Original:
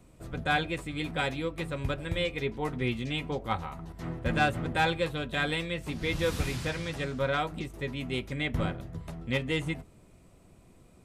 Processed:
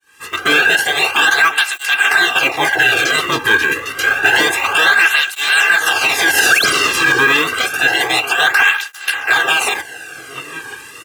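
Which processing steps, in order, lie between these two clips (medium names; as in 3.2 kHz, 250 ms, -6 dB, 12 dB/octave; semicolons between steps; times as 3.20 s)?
fade-in on the opening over 0.67 s; high-pass 400 Hz 12 dB/octave; spectral gate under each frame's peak -15 dB weak; comb 2.5 ms, depth 68%; painted sound rise, 6.48–6.73 s, 940–11000 Hz -45 dBFS; in parallel at -6.5 dB: sample-rate reducer 4.8 kHz, jitter 0%; on the sum: saturation -28 dBFS, distortion -13 dB; small resonant body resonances 1.6/2.7 kHz, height 15 dB, ringing for 25 ms; on a send: filtered feedback delay 1027 ms, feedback 65%, low-pass 2 kHz, level -22.5 dB; on the sum: loudness maximiser +34 dB; cancelling through-zero flanger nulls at 0.28 Hz, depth 1.5 ms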